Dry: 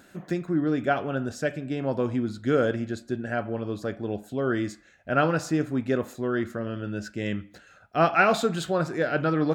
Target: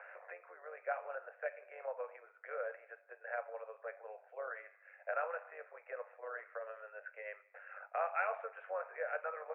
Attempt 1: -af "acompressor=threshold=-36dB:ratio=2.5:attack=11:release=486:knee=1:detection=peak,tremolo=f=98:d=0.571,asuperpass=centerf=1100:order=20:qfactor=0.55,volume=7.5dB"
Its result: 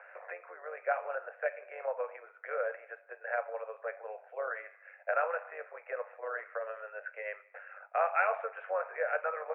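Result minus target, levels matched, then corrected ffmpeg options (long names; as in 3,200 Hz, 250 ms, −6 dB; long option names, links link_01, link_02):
downward compressor: peak gain reduction −7 dB
-af "acompressor=threshold=-47.5dB:ratio=2.5:attack=11:release=486:knee=1:detection=peak,tremolo=f=98:d=0.571,asuperpass=centerf=1100:order=20:qfactor=0.55,volume=7.5dB"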